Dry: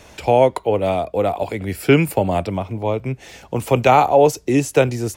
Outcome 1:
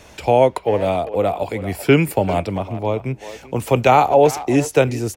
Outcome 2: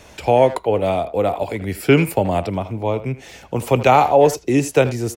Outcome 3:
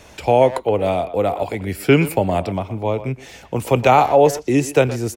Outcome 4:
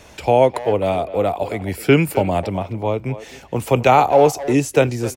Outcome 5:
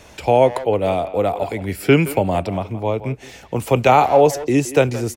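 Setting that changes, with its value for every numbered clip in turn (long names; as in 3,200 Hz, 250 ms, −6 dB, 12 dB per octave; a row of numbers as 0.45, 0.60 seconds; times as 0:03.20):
far-end echo of a speakerphone, delay time: 390, 80, 120, 260, 170 milliseconds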